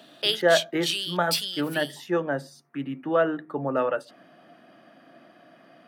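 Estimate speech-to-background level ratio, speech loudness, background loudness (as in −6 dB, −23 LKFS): 1.0 dB, −27.0 LKFS, −28.0 LKFS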